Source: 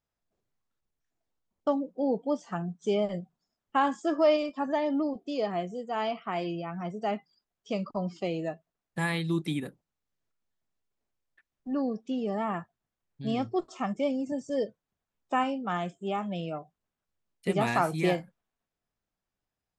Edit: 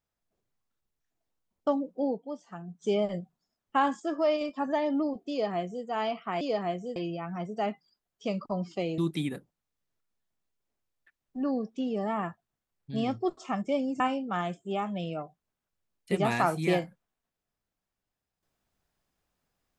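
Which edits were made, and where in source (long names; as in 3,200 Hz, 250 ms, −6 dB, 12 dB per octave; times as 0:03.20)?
0:02.03–0:02.83: duck −9 dB, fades 0.17 s
0:04.00–0:04.41: clip gain −3.5 dB
0:05.30–0:05.85: duplicate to 0:06.41
0:08.43–0:09.29: remove
0:14.31–0:15.36: remove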